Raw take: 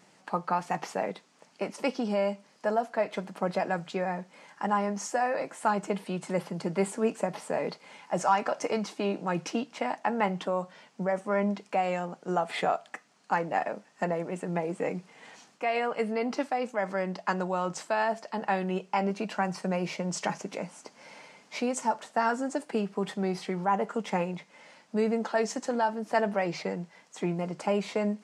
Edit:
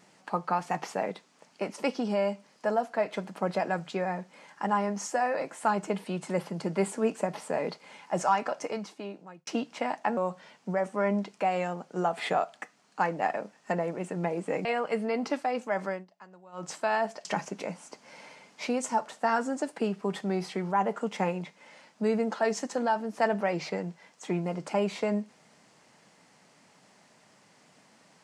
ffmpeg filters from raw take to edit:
-filter_complex "[0:a]asplit=7[a][b][c][d][e][f][g];[a]atrim=end=9.47,asetpts=PTS-STARTPTS,afade=t=out:st=8.21:d=1.26[h];[b]atrim=start=9.47:end=10.172,asetpts=PTS-STARTPTS,afade=t=in:d=0.004:c=hsin[i];[c]atrim=start=10.488:end=14.972[j];[d]atrim=start=15.718:end=17.12,asetpts=PTS-STARTPTS,afade=t=out:st=1.212:d=0.19:silence=0.0749894[k];[e]atrim=start=17.12:end=17.59,asetpts=PTS-STARTPTS,volume=-22.5dB[l];[f]atrim=start=17.59:end=18.322,asetpts=PTS-STARTPTS,afade=t=in:d=0.19:silence=0.0749894[m];[g]atrim=start=20.178[n];[h][i]concat=n=2:v=0:a=1[o];[o][j]acrossfade=d=0.004:c1=hsin:c2=hsin[p];[k][l][m]concat=n=3:v=0:a=1[q];[p][q]acrossfade=d=0.004:c1=hsin:c2=hsin[r];[r][n]acrossfade=d=0.004:c1=hsin:c2=hsin"

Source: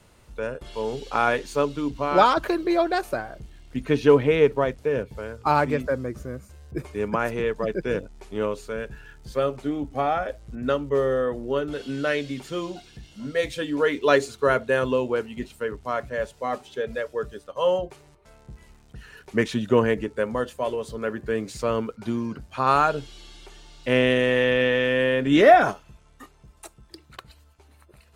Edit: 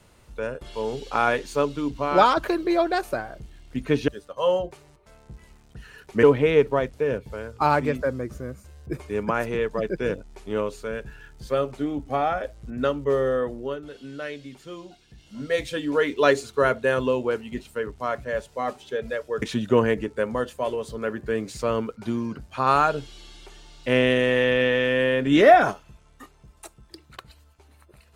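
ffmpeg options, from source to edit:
-filter_complex "[0:a]asplit=6[a][b][c][d][e][f];[a]atrim=end=4.082[g];[b]atrim=start=17.268:end=19.422[h];[c]atrim=start=4.078:end=11.67,asetpts=PTS-STARTPTS,afade=t=out:st=7.202:d=0.39:silence=0.354813[i];[d]atrim=start=11.67:end=12.93,asetpts=PTS-STARTPTS,volume=-9dB[j];[e]atrim=start=12.93:end=17.272,asetpts=PTS-STARTPTS,afade=t=in:d=0.39:silence=0.354813[k];[f]atrim=start=19.418[l];[g][h]acrossfade=d=0.004:c1=hsin:c2=hsin[m];[i][j][k]concat=n=3:v=0:a=1[n];[m][n]acrossfade=d=0.004:c1=hsin:c2=hsin[o];[o][l]acrossfade=d=0.004:c1=hsin:c2=hsin"

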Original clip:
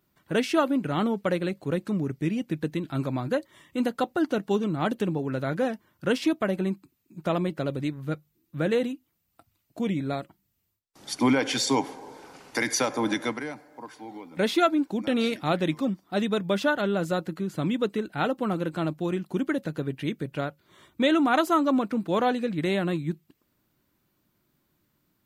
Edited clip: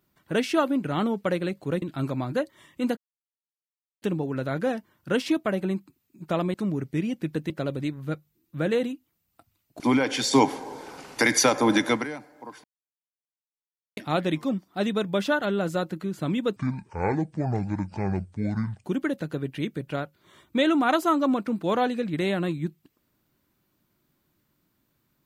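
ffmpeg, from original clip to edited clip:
-filter_complex "[0:a]asplit=13[a][b][c][d][e][f][g][h][i][j][k][l][m];[a]atrim=end=1.822[n];[b]atrim=start=2.778:end=3.93,asetpts=PTS-STARTPTS,afade=t=out:st=1.148:d=0.004:c=hsin[o];[c]atrim=start=3.93:end=4.98,asetpts=PTS-STARTPTS,volume=0[p];[d]atrim=start=4.98:end=7.502,asetpts=PTS-STARTPTS,afade=t=in:d=0.004:c=hsin[q];[e]atrim=start=1.818:end=2.782[r];[f]atrim=start=7.498:end=9.802[s];[g]atrim=start=11.158:end=11.692[t];[h]atrim=start=11.688:end=13.412,asetpts=PTS-STARTPTS,volume=5.5dB[u];[i]atrim=start=13.408:end=14,asetpts=PTS-STARTPTS,afade=t=out:st=0.588:d=0.004:c=hsin[v];[j]atrim=start=14:end=15.33,asetpts=PTS-STARTPTS,volume=0[w];[k]atrim=start=15.33:end=17.924,asetpts=PTS-STARTPTS,afade=t=in:d=0.004:c=hsin[x];[l]atrim=start=17.92:end=19.29,asetpts=PTS-STARTPTS,asetrate=26460,aresample=44100[y];[m]atrim=start=19.286[z];[o][p][q]concat=n=3:v=0:a=1[aa];[n][aa]acrossfade=d=0.004:c1=hsin:c2=hsin[ab];[ab][r]acrossfade=d=0.004:c1=hsin:c2=hsin[ac];[ac][s]acrossfade=d=0.004:c1=hsin:c2=hsin[ad];[ad][t]acrossfade=d=0.004:c1=hsin:c2=hsin[ae];[ae][u]acrossfade=d=0.004:c1=hsin:c2=hsin[af];[v][w][x]concat=n=3:v=0:a=1[ag];[af][ag]acrossfade=d=0.004:c1=hsin:c2=hsin[ah];[ah][y]acrossfade=d=0.004:c1=hsin:c2=hsin[ai];[ai][z]acrossfade=d=0.004:c1=hsin:c2=hsin"

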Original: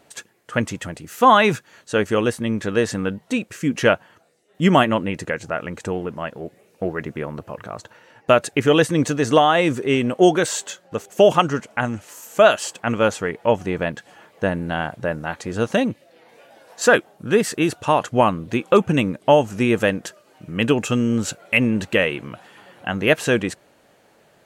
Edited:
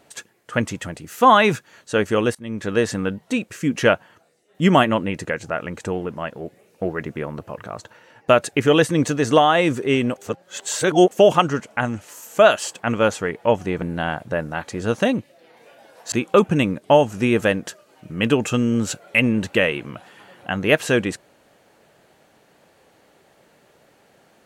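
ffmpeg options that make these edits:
-filter_complex "[0:a]asplit=6[a][b][c][d][e][f];[a]atrim=end=2.35,asetpts=PTS-STARTPTS,afade=t=out:st=2.346:d=0.004:c=hsin:silence=0.0794328[g];[b]atrim=start=2.35:end=10.162,asetpts=PTS-STARTPTS,afade=t=in:d=0.37:silence=0.0794328[h];[c]atrim=start=10.158:end=11.112,asetpts=PTS-STARTPTS,areverse[i];[d]atrim=start=11.108:end=13.822[j];[e]atrim=start=14.538:end=16.842[k];[f]atrim=start=18.498[l];[g][h]concat=n=2:v=0:a=1[m];[m][i]acrossfade=d=0.004:c1=hsin:c2=hsin[n];[n][j]acrossfade=d=0.004:c1=hsin:c2=hsin[o];[o][k]acrossfade=d=0.004:c1=hsin:c2=hsin[p];[p][l]acrossfade=d=0.004:c1=hsin:c2=hsin"

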